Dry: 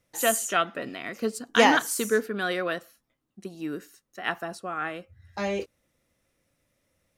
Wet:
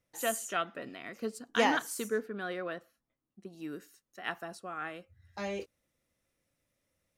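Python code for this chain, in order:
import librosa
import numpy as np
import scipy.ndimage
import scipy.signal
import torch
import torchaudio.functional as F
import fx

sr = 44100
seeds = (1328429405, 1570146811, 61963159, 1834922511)

y = fx.high_shelf(x, sr, hz=3000.0, db=fx.steps((0.0, -2.0), (2.07, -10.5), (3.52, 2.0)))
y = y * 10.0 ** (-8.0 / 20.0)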